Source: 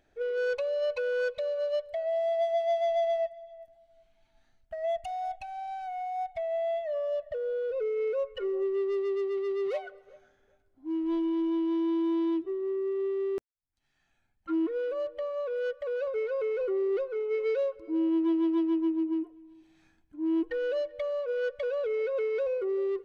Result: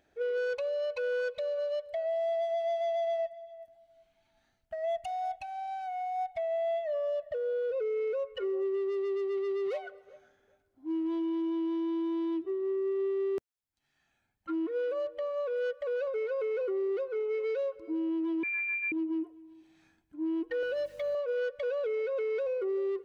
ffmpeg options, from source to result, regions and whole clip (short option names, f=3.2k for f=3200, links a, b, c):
-filter_complex "[0:a]asettb=1/sr,asplit=3[a][b][c];[a]atrim=end=18.434[d];[b]atrim=start=18.43:end=18.92,asetpts=PTS-STARTPTS,afade=t=in:d=0.004:c=qsin,afade=t=out:st=0.486:d=0.004:c=qsin,highpass=f=450:p=1,lowpass=f=2.3k:t=q:w=0.5098,lowpass=f=2.3k:t=q:w=0.6013,lowpass=f=2.3k:t=q:w=0.9,lowpass=f=2.3k:t=q:w=2.563,afreqshift=-2700[e];[c]atrim=start=18.916[f];[d][e]acrossfade=d=0.004:c1=hsin:c2=qsin[g];[g][f]acrossfade=d=0.004:c1=qsin:c2=hsin,asettb=1/sr,asplit=3[h][i][j];[h]atrim=end=20.624[k];[i]atrim=start=20.62:end=21.15,asetpts=PTS-STARTPTS,afade=t=in:d=0.004:c=qsin,afade=t=out:st=0.526:d=0.004:c=qsin,aeval=exprs='val(0)*gte(abs(val(0)),0.00168)':c=same,aecho=1:1:7.4:0.75,atrim=end_sample=23373,aeval=exprs='val(0)+0.00112*(sin(2*PI*50*n/s)+sin(2*PI*2*50*n/s)/2+sin(2*PI*3*50*n/s)/3+sin(2*PI*4*50*n/s)/4+sin(2*PI*5*50*n/s)/5)':c=same[l];[j]atrim=start=21.146[m];[k][l]acrossfade=d=0.004:c1=hsin:c2=qsin[n];[n][m]acrossfade=d=0.004:c1=qsin:c2=hsin,highpass=f=91:p=1,alimiter=level_in=3dB:limit=-24dB:level=0:latency=1:release=100,volume=-3dB"